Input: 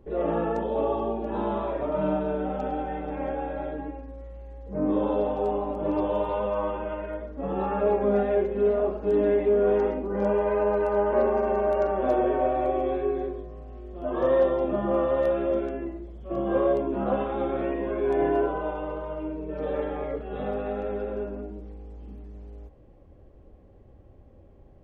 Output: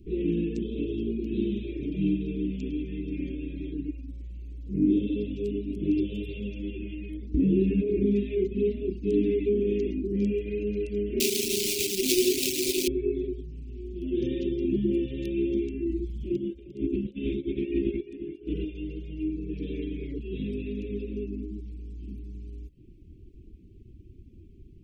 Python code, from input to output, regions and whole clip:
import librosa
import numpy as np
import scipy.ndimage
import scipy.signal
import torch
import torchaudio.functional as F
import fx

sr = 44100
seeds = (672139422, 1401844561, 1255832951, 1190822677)

y = fx.chain(x, sr, fx.lowpass(hz=1800.0, slope=6),
    fx.doubler(ms=26.0, db=-12),
    fx.env_flatten(amount_pct=70), at=(7.34, 8.06))
y = fx.chain(y, sr, fx.highpass(hz=240.0, slope=12),
    fx.quant_companded(bits=4),
    fx.high_shelf(hz=2000.0, db=7.0), at=(11.2, 12.88))
y = fx.chain(y, sr, fx.over_compress(threshold_db=-30.0, ratio=-0.5),
    fx.echo_single(ms=351, db=-12.5), at=(15.89, 18.67))
y = scipy.signal.sosfilt(scipy.signal.cheby1(4, 1.0, [370.0, 2400.0], 'bandstop', fs=sr, output='sos'), y)
y = fx.dereverb_blind(y, sr, rt60_s=0.58)
y = y * 10.0 ** (5.5 / 20.0)